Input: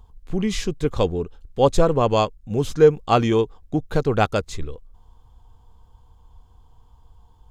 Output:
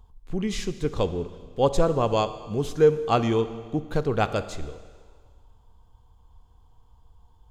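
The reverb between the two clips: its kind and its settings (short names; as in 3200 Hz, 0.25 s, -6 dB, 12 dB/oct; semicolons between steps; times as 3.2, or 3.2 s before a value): Schroeder reverb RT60 1.7 s, combs from 27 ms, DRR 12 dB; gain -4.5 dB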